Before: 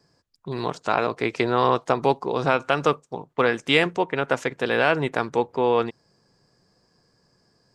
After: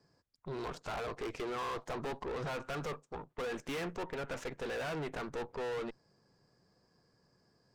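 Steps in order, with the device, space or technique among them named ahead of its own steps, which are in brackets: tube preamp driven hard (valve stage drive 33 dB, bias 0.65; treble shelf 3.9 kHz -6 dB); trim -2.5 dB

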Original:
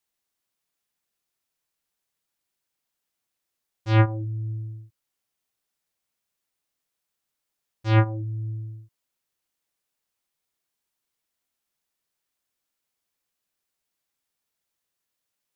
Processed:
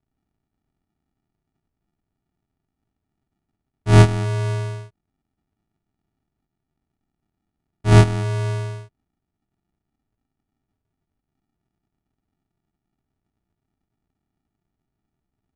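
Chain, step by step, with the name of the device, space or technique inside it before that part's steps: crushed at another speed (playback speed 2×; sample-and-hold 42×; playback speed 0.5×); treble shelf 3.8 kHz -6 dB; trim +7.5 dB

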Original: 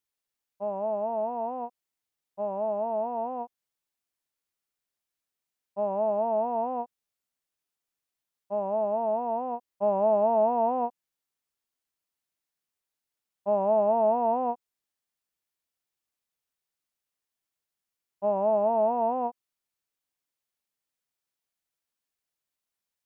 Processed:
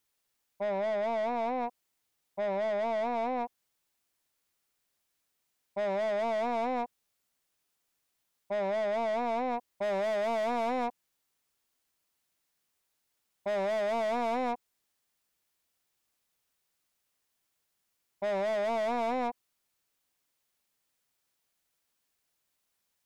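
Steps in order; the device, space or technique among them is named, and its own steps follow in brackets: saturation between pre-emphasis and de-emphasis (treble shelf 2.2 kHz +11 dB; saturation -36 dBFS, distortion -4 dB; treble shelf 2.2 kHz -11 dB); trim +8 dB

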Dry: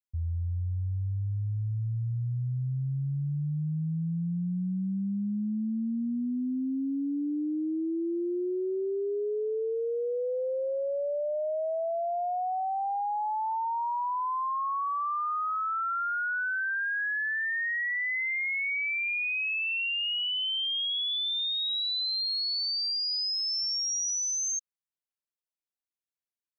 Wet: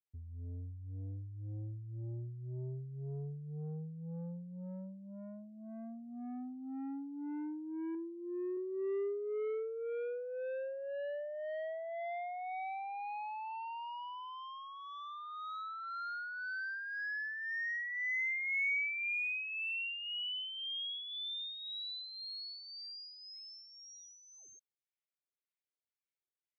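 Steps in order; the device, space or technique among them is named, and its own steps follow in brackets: 7.94–8.57 s: comb 7.3 ms, depth 44%; guitar amplifier with harmonic tremolo (harmonic tremolo 1.9 Hz, depth 70%, crossover 940 Hz; saturation -34.5 dBFS, distortion -13 dB; cabinet simulation 89–3900 Hz, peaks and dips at 210 Hz -9 dB, 400 Hz +5 dB, 1.1 kHz -8 dB, 2.2 kHz +7 dB); trim -3 dB

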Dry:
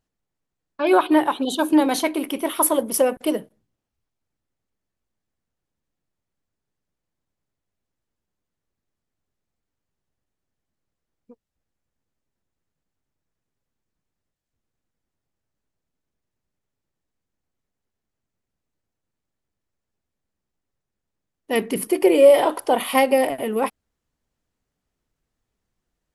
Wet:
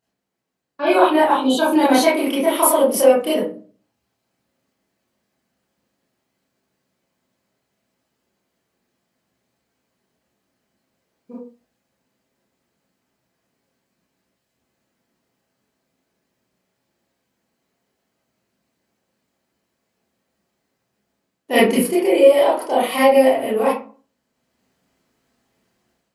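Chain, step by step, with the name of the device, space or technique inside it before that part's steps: far laptop microphone (reverberation RT60 0.35 s, pre-delay 24 ms, DRR -8.5 dB; high-pass 160 Hz 12 dB/octave; level rider gain up to 7 dB); trim -1 dB

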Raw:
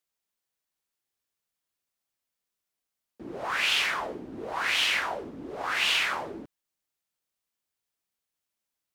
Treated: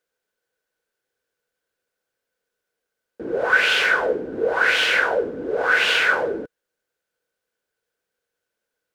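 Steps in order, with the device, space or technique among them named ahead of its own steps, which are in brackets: inside a helmet (treble shelf 5.8 kHz -6 dB; small resonant body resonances 480/1500 Hz, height 17 dB, ringing for 30 ms); trim +4.5 dB

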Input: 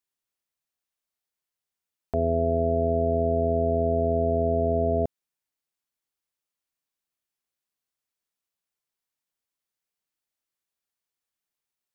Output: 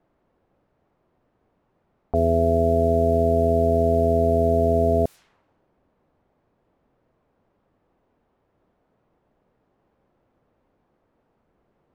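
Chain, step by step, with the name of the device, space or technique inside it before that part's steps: cassette deck with a dynamic noise filter (white noise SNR 29 dB; level-controlled noise filter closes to 580 Hz, open at -23.5 dBFS); trim +4.5 dB

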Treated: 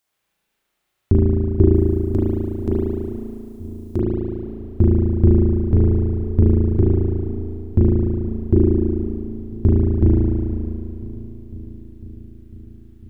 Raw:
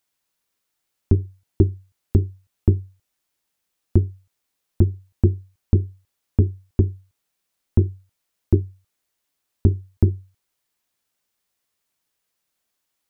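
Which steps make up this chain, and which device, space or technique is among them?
1.74–4.01 s: tone controls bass -9 dB, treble +14 dB; dub delay into a spring reverb (filtered feedback delay 500 ms, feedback 75%, low-pass 940 Hz, level -16 dB; spring tank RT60 2.5 s, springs 36 ms, chirp 45 ms, DRR -8 dB)

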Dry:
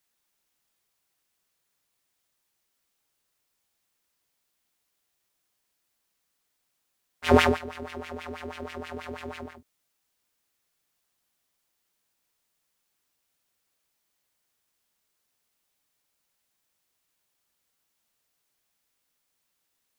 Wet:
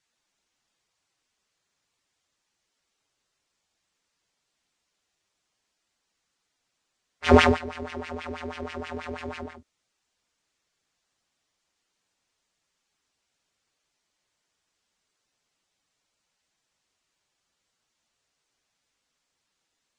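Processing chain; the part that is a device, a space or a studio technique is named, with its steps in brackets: clip after many re-uploads (low-pass 8.2 kHz 24 dB/octave; coarse spectral quantiser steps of 15 dB); trim +3 dB

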